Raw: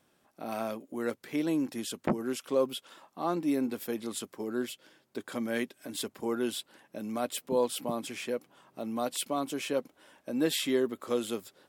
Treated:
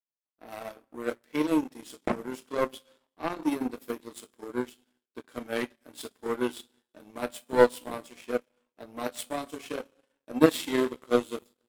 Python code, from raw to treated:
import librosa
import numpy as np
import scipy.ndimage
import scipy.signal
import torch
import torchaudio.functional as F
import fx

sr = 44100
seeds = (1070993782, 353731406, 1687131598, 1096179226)

y = fx.rev_double_slope(x, sr, seeds[0], early_s=0.25, late_s=1.7, knee_db=-18, drr_db=0.0)
y = fx.power_curve(y, sr, exponent=2.0)
y = y * 10.0 ** (8.0 / 20.0)